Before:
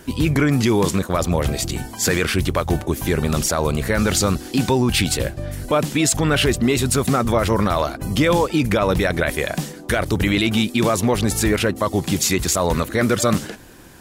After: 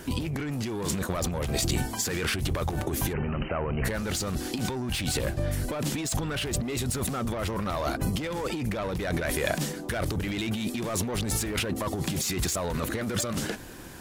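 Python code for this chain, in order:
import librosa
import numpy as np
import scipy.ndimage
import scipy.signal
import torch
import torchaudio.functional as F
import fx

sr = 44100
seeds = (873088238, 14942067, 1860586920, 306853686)

y = 10.0 ** (-16.5 / 20.0) * np.tanh(x / 10.0 ** (-16.5 / 20.0))
y = fx.brickwall_lowpass(y, sr, high_hz=3100.0, at=(3.12, 3.84), fade=0.02)
y = fx.over_compress(y, sr, threshold_db=-26.0, ratio=-1.0)
y = y * librosa.db_to_amplitude(-3.0)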